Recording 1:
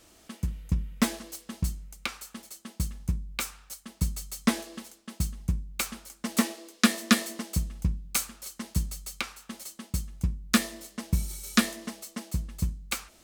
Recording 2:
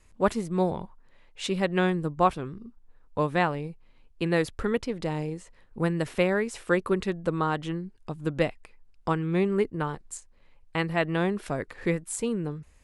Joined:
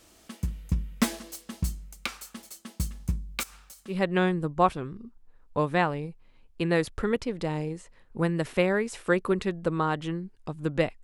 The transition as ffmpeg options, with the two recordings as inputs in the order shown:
-filter_complex "[0:a]asettb=1/sr,asplit=3[s0][s1][s2];[s0]atrim=end=3.434[s3];[s1]atrim=start=3.43:end=3.96,asetpts=PTS-STARTPTS,afade=t=in:d=0.004:c=qsin,afade=t=out:st=0.526:d=0.004:c=qsin,acompressor=threshold=0.00708:ratio=10:attack=3.2:release=140:knee=1:detection=peak[s4];[s2]atrim=start=3.956[s5];[s3][s4]acrossfade=d=0.004:c1=hsin:c2=qsin[s6];[s6][s5]acrossfade=d=0.004:c1=qsin:c2=hsin,apad=whole_dur=11.03,atrim=end=11.03,atrim=end=3.96,asetpts=PTS-STARTPTS[s7];[1:a]atrim=start=1.47:end=8.64,asetpts=PTS-STARTPTS[s8];[s7][s8]acrossfade=d=0.1:c1=tri:c2=tri"

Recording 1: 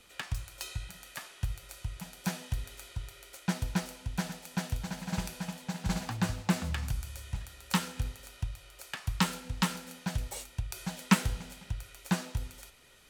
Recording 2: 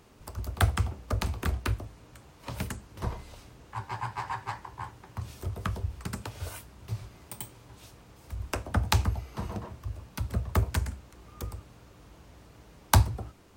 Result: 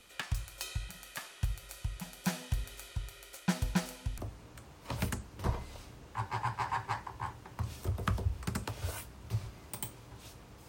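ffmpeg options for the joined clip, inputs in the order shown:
-filter_complex "[0:a]apad=whole_dur=10.68,atrim=end=10.68,atrim=end=4.182[s0];[1:a]atrim=start=1.758:end=8.26[s1];[s0][s1]acrossfade=d=0.004:c1=hsin:c2=hsin"

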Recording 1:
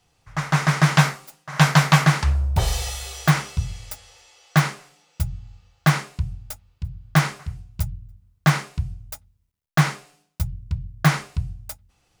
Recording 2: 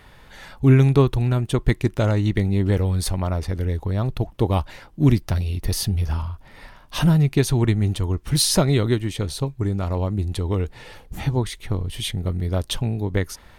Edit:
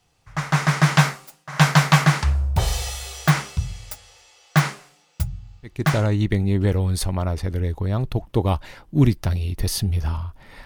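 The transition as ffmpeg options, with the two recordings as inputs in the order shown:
-filter_complex "[0:a]apad=whole_dur=10.65,atrim=end=10.65,atrim=end=6.16,asetpts=PTS-STARTPTS[s0];[1:a]atrim=start=1.67:end=6.7,asetpts=PTS-STARTPTS[s1];[s0][s1]acrossfade=d=0.54:c1=qsin:c2=qsin"

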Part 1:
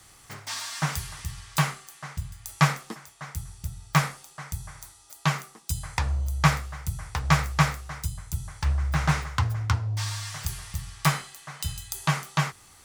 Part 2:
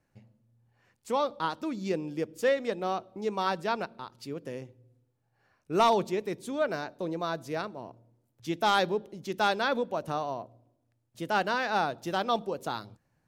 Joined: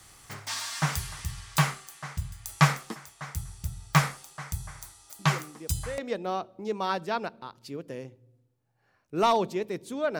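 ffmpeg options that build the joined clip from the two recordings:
-filter_complex "[1:a]asplit=2[s0][s1];[0:a]apad=whole_dur=10.19,atrim=end=10.19,atrim=end=5.982[s2];[s1]atrim=start=2.548:end=6.76[s3];[s0]atrim=start=1.76:end=2.55,asetpts=PTS-STARTPTS,volume=0.266,afade=t=in:d=0.004:c=hsin,afade=t=out:st=0.786:d=0.004:c=hsin,adelay=5190[s4];[s2][s3]acrossfade=d=0.004:c1=hsin:c2=hsin[s5];[s5][s4]amix=inputs=2:normalize=0"

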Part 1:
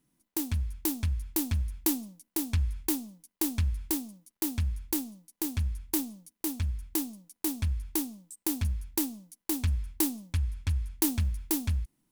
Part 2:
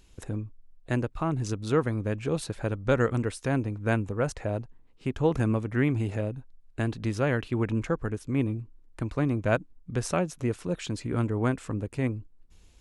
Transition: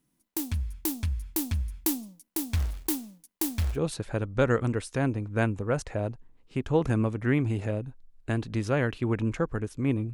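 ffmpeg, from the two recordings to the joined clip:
-filter_complex "[0:a]asettb=1/sr,asplit=3[s0][s1][s2];[s0]atrim=end=2.504[s3];[s1]atrim=start=2.5:end=3.79,asetpts=PTS-STARTPTS,afade=t=in:d=0.004:c=qsin,afade=t=out:st=1.286:d=0.004:c=qsin,acrusher=bits=4:mode=log:mix=0:aa=0.000001[s4];[s2]atrim=start=3.786[s5];[s3][s4]acrossfade=d=0.004:c1=hsin:c2=qsin[s6];[s6][s5]acrossfade=d=0.004:c1=qsin:c2=hsin,apad=whole_dur=10.13,atrim=end=10.13,atrim=end=3.79,asetpts=PTS-STARTPTS[s7];[1:a]atrim=start=2.21:end=8.63,asetpts=PTS-STARTPTS[s8];[s7][s8]acrossfade=d=0.08:c1=tri:c2=tri"

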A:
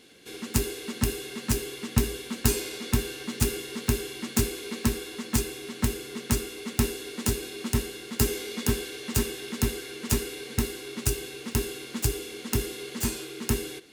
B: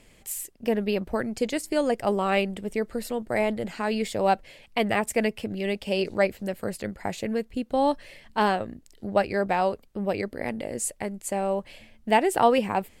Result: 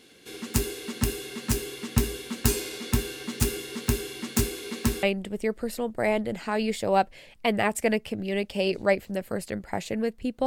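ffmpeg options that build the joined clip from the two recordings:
-filter_complex "[0:a]apad=whole_dur=10.46,atrim=end=10.46,atrim=end=5.032[s0];[1:a]atrim=start=2.348:end=7.78[s1];[s0][s1]acrossfade=d=0.004:c1=hsin:c2=hsin"

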